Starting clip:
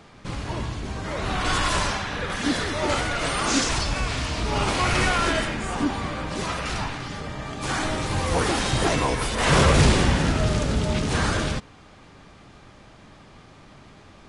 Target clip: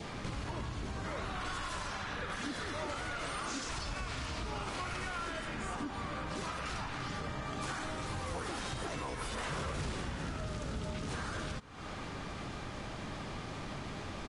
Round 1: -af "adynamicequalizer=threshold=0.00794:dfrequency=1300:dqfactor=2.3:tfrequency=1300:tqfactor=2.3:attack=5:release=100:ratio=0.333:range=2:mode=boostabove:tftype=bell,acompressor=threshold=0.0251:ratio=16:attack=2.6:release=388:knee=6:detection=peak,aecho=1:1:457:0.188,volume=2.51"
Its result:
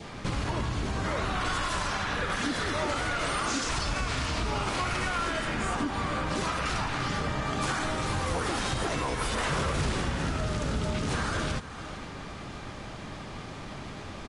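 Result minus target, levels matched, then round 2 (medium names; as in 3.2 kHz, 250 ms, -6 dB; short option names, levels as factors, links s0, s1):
compression: peak gain reduction -9 dB; echo-to-direct +11 dB
-af "adynamicequalizer=threshold=0.00794:dfrequency=1300:dqfactor=2.3:tfrequency=1300:tqfactor=2.3:attack=5:release=100:ratio=0.333:range=2:mode=boostabove:tftype=bell,acompressor=threshold=0.00841:ratio=16:attack=2.6:release=388:knee=6:detection=peak,aecho=1:1:457:0.0531,volume=2.51"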